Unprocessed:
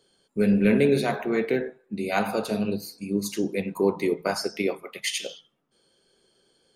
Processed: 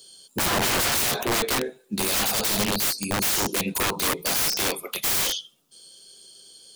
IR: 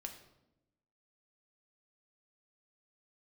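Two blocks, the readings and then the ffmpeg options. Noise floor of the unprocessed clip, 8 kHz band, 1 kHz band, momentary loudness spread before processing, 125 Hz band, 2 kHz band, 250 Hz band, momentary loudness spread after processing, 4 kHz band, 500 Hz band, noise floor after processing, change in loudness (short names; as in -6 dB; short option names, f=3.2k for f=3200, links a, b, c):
-68 dBFS, +14.0 dB, +4.5 dB, 11 LU, -2.5 dB, +5.0 dB, -6.5 dB, 5 LU, +10.5 dB, -5.5 dB, -61 dBFS, +3.0 dB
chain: -af "aexciter=amount=5.1:drive=7.3:freq=2.9k,aeval=exprs='(mod(11.2*val(0)+1,2)-1)/11.2':c=same,volume=3dB"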